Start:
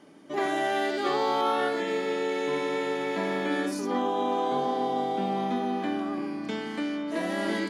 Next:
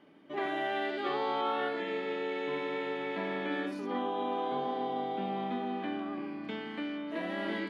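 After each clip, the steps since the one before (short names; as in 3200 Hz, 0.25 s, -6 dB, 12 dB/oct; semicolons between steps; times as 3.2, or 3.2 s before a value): resonant high shelf 4500 Hz -13 dB, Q 1.5; gain -6.5 dB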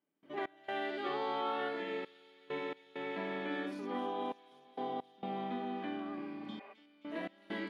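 step gate ".x.xxxxxx." 66 bpm -24 dB; thin delay 0.264 s, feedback 68%, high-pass 4300 Hz, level -10 dB; spectral repair 6.42–6.71, 390–3000 Hz before; gain -4 dB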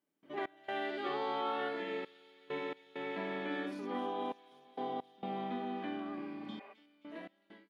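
ending faded out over 1.10 s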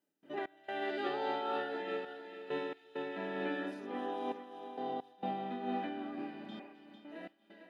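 notch comb 1100 Hz; thinning echo 0.45 s, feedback 20%, high-pass 200 Hz, level -9.5 dB; noise-modulated level, depth 65%; gain +4 dB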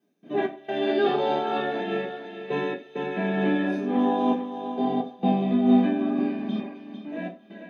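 reverb RT60 0.35 s, pre-delay 3 ms, DRR -6 dB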